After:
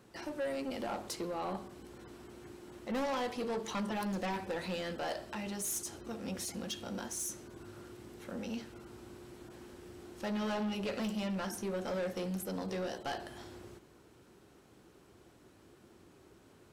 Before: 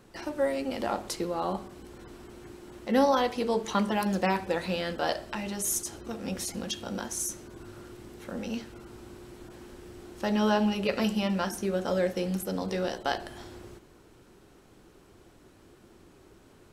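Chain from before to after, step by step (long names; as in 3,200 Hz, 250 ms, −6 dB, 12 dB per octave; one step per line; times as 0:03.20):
high-pass filter 62 Hz
soft clipping −27.5 dBFS, distortion −9 dB
level −4 dB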